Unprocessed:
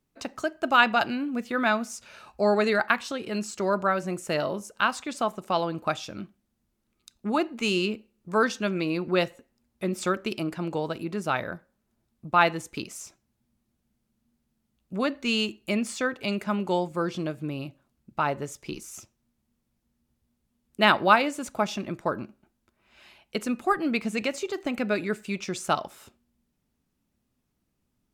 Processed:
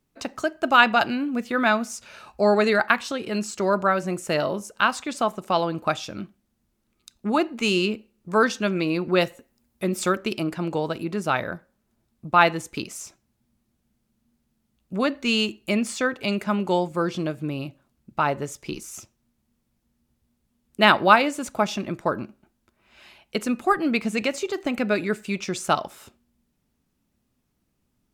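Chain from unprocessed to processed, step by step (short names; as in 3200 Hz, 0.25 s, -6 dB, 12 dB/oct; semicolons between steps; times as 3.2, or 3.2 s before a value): 9.21–10.18 high shelf 10000 Hz +8.5 dB; gain +3.5 dB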